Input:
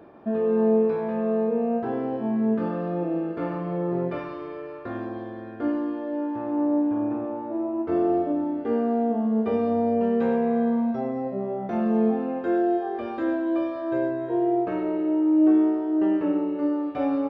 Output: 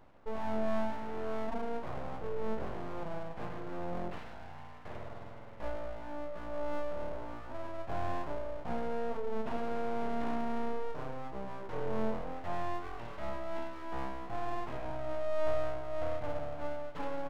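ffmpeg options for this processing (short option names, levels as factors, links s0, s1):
-af "equalizer=f=1000:w=0.47:g=-5.5,aeval=exprs='abs(val(0))':c=same,volume=0.473"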